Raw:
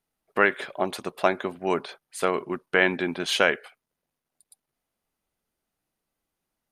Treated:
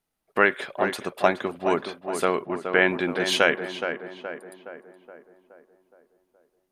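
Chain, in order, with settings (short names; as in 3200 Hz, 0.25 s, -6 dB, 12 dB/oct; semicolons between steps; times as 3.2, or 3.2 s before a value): 2.46–2.88 LPF 3200 Hz 12 dB/oct; on a send: tape echo 0.42 s, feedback 58%, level -6.5 dB, low-pass 1800 Hz; on the sum: gain +1 dB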